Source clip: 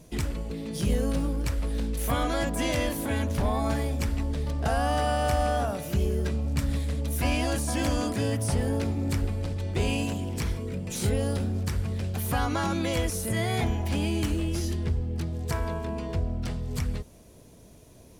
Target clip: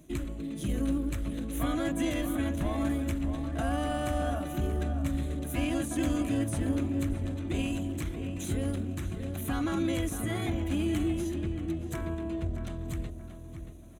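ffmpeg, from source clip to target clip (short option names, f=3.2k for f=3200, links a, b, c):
-filter_complex "[0:a]superequalizer=6b=2.51:7b=0.501:9b=0.562:14b=0.282,atempo=1.3,asplit=2[a][b];[b]adelay=629,lowpass=f=2.3k:p=1,volume=-8dB,asplit=2[c][d];[d]adelay=629,lowpass=f=2.3k:p=1,volume=0.38,asplit=2[e][f];[f]adelay=629,lowpass=f=2.3k:p=1,volume=0.38,asplit=2[g][h];[h]adelay=629,lowpass=f=2.3k:p=1,volume=0.38[i];[c][e][g][i]amix=inputs=4:normalize=0[j];[a][j]amix=inputs=2:normalize=0,volume=-5.5dB"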